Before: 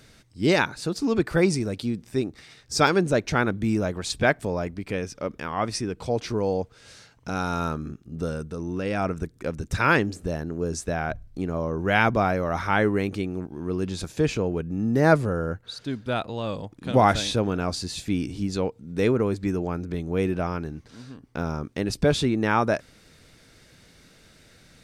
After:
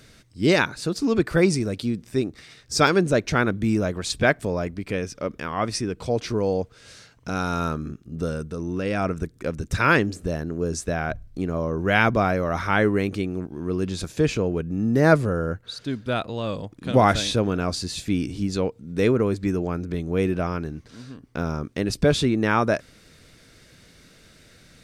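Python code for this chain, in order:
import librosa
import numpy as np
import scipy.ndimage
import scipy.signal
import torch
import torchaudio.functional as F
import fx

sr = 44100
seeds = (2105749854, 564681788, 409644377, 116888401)

y = fx.peak_eq(x, sr, hz=840.0, db=-4.5, octaves=0.33)
y = y * librosa.db_to_amplitude(2.0)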